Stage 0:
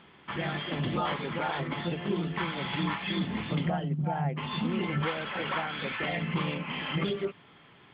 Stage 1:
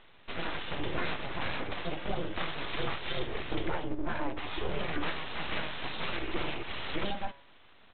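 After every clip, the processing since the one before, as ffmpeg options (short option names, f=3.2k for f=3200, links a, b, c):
-af "aresample=8000,aeval=exprs='abs(val(0))':c=same,aresample=44100,bandreject=f=139.5:t=h:w=4,bandreject=f=279:t=h:w=4,bandreject=f=418.5:t=h:w=4,bandreject=f=558:t=h:w=4,bandreject=f=697.5:t=h:w=4,bandreject=f=837:t=h:w=4,bandreject=f=976.5:t=h:w=4,bandreject=f=1.116k:t=h:w=4,bandreject=f=1.2555k:t=h:w=4,bandreject=f=1.395k:t=h:w=4,bandreject=f=1.5345k:t=h:w=4,bandreject=f=1.674k:t=h:w=4,bandreject=f=1.8135k:t=h:w=4,bandreject=f=1.953k:t=h:w=4,bandreject=f=2.0925k:t=h:w=4,bandreject=f=2.232k:t=h:w=4,bandreject=f=2.3715k:t=h:w=4,bandreject=f=2.511k:t=h:w=4,bandreject=f=2.6505k:t=h:w=4,bandreject=f=2.79k:t=h:w=4,bandreject=f=2.9295k:t=h:w=4,bandreject=f=3.069k:t=h:w=4,bandreject=f=3.2085k:t=h:w=4,bandreject=f=3.348k:t=h:w=4,bandreject=f=3.4875k:t=h:w=4,bandreject=f=3.627k:t=h:w=4,bandreject=f=3.7665k:t=h:w=4,bandreject=f=3.906k:t=h:w=4,bandreject=f=4.0455k:t=h:w=4,bandreject=f=4.185k:t=h:w=4,bandreject=f=4.3245k:t=h:w=4,bandreject=f=4.464k:t=h:w=4,bandreject=f=4.6035k:t=h:w=4,bandreject=f=4.743k:t=h:w=4,bandreject=f=4.8825k:t=h:w=4"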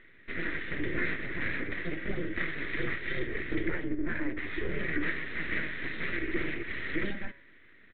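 -af "firequalizer=gain_entry='entry(130,0);entry(330,5);entry(810,-17);entry(1900,11);entry(2800,-8)':delay=0.05:min_phase=1"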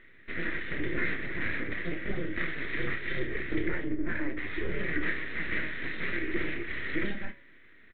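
-filter_complex "[0:a]asplit=2[a][b];[b]adelay=29,volume=-9dB[c];[a][c]amix=inputs=2:normalize=0"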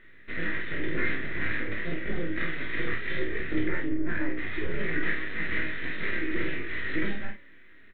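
-filter_complex "[0:a]bandreject=f=2.2k:w=28,asplit=2[a][b];[b]aecho=0:1:19|48:0.501|0.447[c];[a][c]amix=inputs=2:normalize=0"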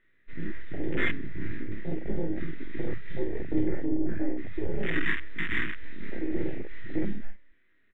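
-af "afwtdn=0.0447,volume=2dB"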